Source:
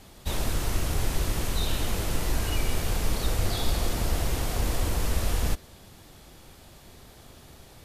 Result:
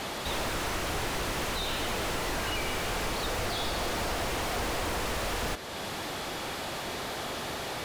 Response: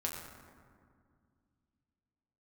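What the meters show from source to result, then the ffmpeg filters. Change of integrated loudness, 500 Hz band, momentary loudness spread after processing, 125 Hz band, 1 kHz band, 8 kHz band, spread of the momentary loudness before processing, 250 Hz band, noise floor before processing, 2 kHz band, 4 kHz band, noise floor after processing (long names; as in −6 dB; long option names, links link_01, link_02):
−2.5 dB, +2.5 dB, 4 LU, −9.0 dB, +5.0 dB, −2.0 dB, 2 LU, −1.5 dB, −51 dBFS, +5.0 dB, +2.0 dB, −37 dBFS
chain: -filter_complex "[0:a]acompressor=threshold=-38dB:ratio=2,asplit=2[link_01][link_02];[link_02]highpass=frequency=720:poles=1,volume=30dB,asoftclip=type=tanh:threshold=-23.5dB[link_03];[link_01][link_03]amix=inputs=2:normalize=0,lowpass=frequency=2400:poles=1,volume=-6dB,volume=1.5dB"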